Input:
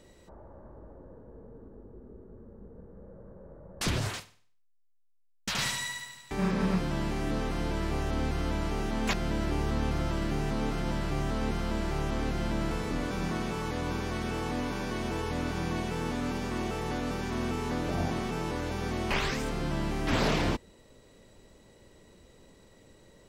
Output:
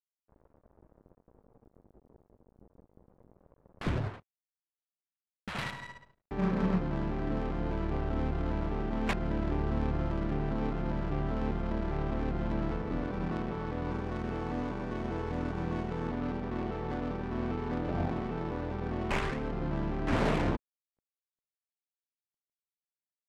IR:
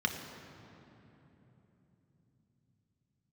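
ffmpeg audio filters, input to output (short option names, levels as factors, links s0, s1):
-af "asetnsamples=n=441:p=0,asendcmd='13.91 equalizer g 5;16.09 equalizer g -11.5',equalizer=f=6600:w=2.7:g=-10.5,aeval=exprs='sgn(val(0))*max(abs(val(0))-0.00501,0)':c=same,adynamicsmooth=sensitivity=3.5:basefreq=840"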